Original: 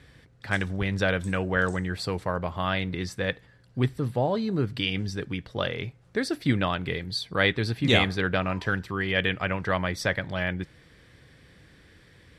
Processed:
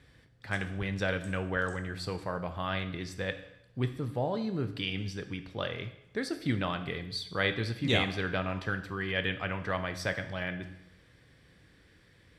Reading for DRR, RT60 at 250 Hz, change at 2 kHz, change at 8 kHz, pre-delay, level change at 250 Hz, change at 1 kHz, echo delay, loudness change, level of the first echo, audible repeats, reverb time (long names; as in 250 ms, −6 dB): 9.0 dB, 0.85 s, −6.0 dB, −6.0 dB, 14 ms, −6.0 dB, −6.0 dB, no echo audible, −6.0 dB, no echo audible, no echo audible, 0.80 s